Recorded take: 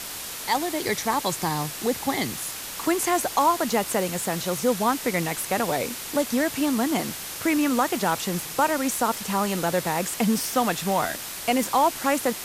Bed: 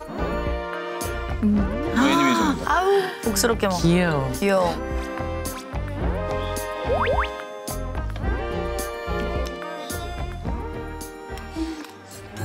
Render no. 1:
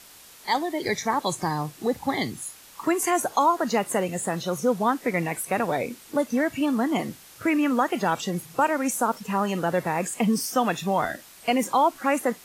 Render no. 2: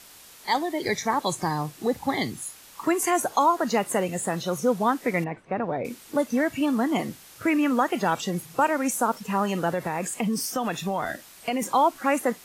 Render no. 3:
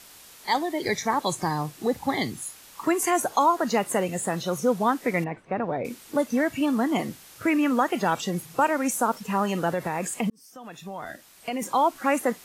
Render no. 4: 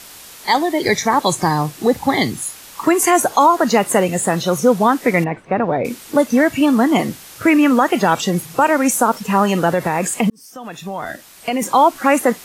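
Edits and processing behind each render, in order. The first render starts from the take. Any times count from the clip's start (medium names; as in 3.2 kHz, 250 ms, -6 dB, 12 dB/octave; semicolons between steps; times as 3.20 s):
noise print and reduce 14 dB
5.24–5.85 s: tape spacing loss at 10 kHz 44 dB; 9.70–11.62 s: compression 3:1, threshold -23 dBFS
10.30–12.06 s: fade in
trim +10 dB; peak limiter -3 dBFS, peak gain reduction 3 dB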